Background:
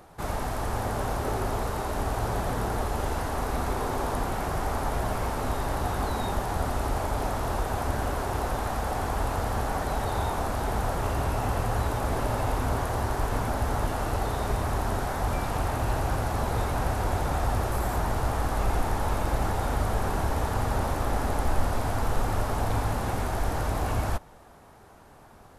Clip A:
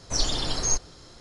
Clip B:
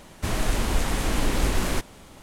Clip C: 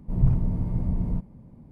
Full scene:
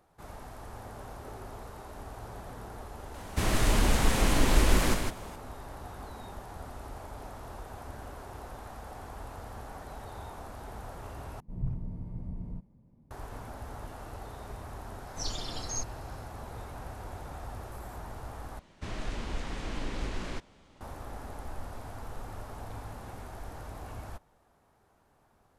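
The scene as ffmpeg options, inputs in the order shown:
-filter_complex "[2:a]asplit=2[a][b];[0:a]volume=-15dB[c];[a]aecho=1:1:58.31|154.5:0.282|0.562[d];[b]lowpass=5.5k[e];[c]asplit=3[f][g][h];[f]atrim=end=11.404[i];[3:a]atrim=end=1.71,asetpts=PTS-STARTPTS,volume=-13dB[j];[g]atrim=start=13.106:end=18.594[k];[e]atrim=end=2.22,asetpts=PTS-STARTPTS,volume=-11.5dB[l];[h]atrim=start=20.806[m];[d]atrim=end=2.22,asetpts=PTS-STARTPTS,volume=-1.5dB,afade=t=in:d=0.004:c=hsin,afade=t=out:st=2.216:d=0.004:c=hsin,adelay=3140[n];[1:a]atrim=end=1.2,asetpts=PTS-STARTPTS,volume=-11dB,afade=t=in:d=0.004:c=hsin,afade=t=out:st=1.196:d=0.004:c=hsin,adelay=15060[o];[i][j]acrossfade=d=0.004:c1=hsin:c2=hsin[p];[p][k]acrossfade=d=0.004:c1=hsin:c2=hsin[q];[q][l]acrossfade=d=0.004:c1=hsin:c2=hsin[r];[r][m]acrossfade=d=0.004:c1=hsin:c2=hsin[s];[s][n][o]amix=inputs=3:normalize=0"

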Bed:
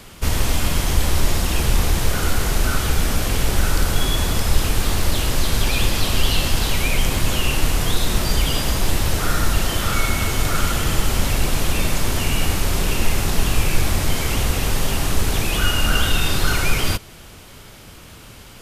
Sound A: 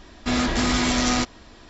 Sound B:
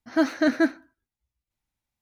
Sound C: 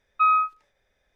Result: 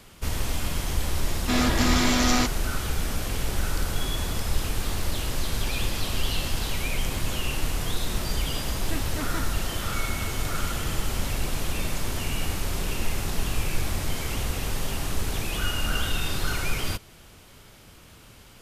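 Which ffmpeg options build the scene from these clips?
-filter_complex "[0:a]volume=-8.5dB[a];[2:a]aeval=exprs='0.141*(abs(mod(val(0)/0.141+3,4)-2)-1)':c=same[b];[1:a]atrim=end=1.69,asetpts=PTS-STARTPTS,volume=-1dB,afade=t=in:d=0.004:c=hsin,afade=t=out:st=1.686:d=0.004:c=hsin,adelay=1220[c];[b]atrim=end=2.01,asetpts=PTS-STARTPTS,volume=-11.5dB,afade=t=in:d=0.004:c=hsin,afade=t=out:st=2.006:d=0.004:c=hsin,adelay=385434S[d];[a][c][d]amix=inputs=3:normalize=0"

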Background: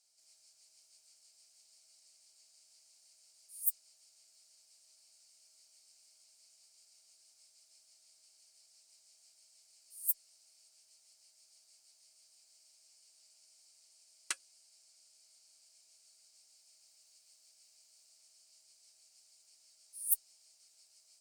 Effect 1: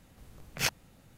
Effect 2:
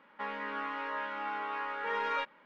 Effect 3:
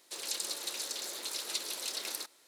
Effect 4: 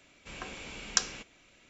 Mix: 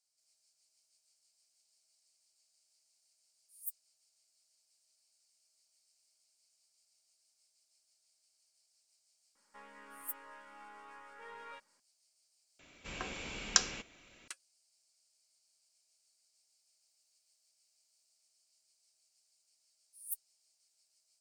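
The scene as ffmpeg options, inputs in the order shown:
-filter_complex "[0:a]volume=-10dB[a];[2:a]aeval=exprs='if(lt(val(0),0),0.708*val(0),val(0))':c=same[b];[a]asplit=2[c][d];[c]atrim=end=12.594[e];[4:a]atrim=end=1.69[f];[d]atrim=start=14.276[g];[b]atrim=end=2.45,asetpts=PTS-STARTPTS,volume=-16dB,afade=t=in:d=0.004:c=hsin,afade=t=out:st=2.446:d=0.004:c=hsin,adelay=9350[h];[e][f]acrossfade=d=0.004:c1=hsin:c2=hsin[i];[i][g]acrossfade=d=0.004:c1=hsin:c2=hsin[j];[j][h]amix=inputs=2:normalize=0"

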